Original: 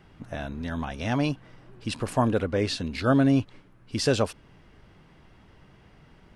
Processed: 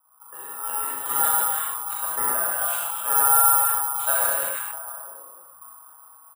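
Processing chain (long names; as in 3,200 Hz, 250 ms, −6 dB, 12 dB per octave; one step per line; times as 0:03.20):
low-pass that shuts in the quiet parts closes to 430 Hz, open at −22.5 dBFS
comb filter 7.1 ms, depth 66%
automatic gain control gain up to 10.5 dB
phaser with its sweep stopped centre 2,900 Hz, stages 4
ring modulation 1,100 Hz
loudspeaker in its box 100–3,800 Hz, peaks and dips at 180 Hz +6 dB, 320 Hz +5 dB, 2,900 Hz +4 dB
echo through a band-pass that steps 328 ms, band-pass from 2,500 Hz, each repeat −1.4 octaves, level −8.5 dB
convolution reverb, pre-delay 33 ms, DRR −4 dB
bad sample-rate conversion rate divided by 4×, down filtered, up zero stuff
level that may fall only so fast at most 25 dB per second
level −14.5 dB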